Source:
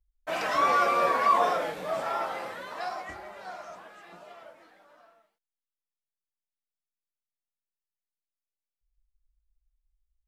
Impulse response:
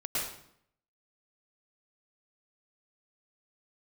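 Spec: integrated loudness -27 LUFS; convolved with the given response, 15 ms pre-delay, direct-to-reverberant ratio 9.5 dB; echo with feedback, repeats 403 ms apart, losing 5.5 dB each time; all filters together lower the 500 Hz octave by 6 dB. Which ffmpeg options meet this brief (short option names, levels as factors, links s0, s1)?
-filter_complex "[0:a]equalizer=f=500:t=o:g=-8,aecho=1:1:403|806|1209|1612|2015|2418|2821:0.531|0.281|0.149|0.079|0.0419|0.0222|0.0118,asplit=2[s0][s1];[1:a]atrim=start_sample=2205,adelay=15[s2];[s1][s2]afir=irnorm=-1:irlink=0,volume=0.168[s3];[s0][s3]amix=inputs=2:normalize=0,volume=1.06"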